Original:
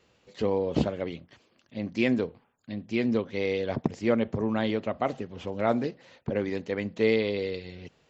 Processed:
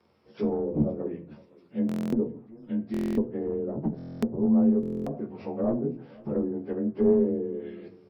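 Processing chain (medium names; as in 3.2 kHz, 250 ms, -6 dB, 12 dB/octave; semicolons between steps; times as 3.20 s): frequency axis rescaled in octaves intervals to 91%; high-pass 92 Hz 6 dB/octave; high-order bell 2.5 kHz -8.5 dB; one-sided clip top -24.5 dBFS; low-pass that closes with the level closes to 540 Hz, closed at -28.5 dBFS; doubling 14 ms -9.5 dB; delay 513 ms -23.5 dB; on a send at -7.5 dB: reverberation RT60 0.45 s, pre-delay 3 ms; on the sum: buffer glitch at 1.87/2.92/3.97/4.81 s, samples 1024, times 10; trim +2.5 dB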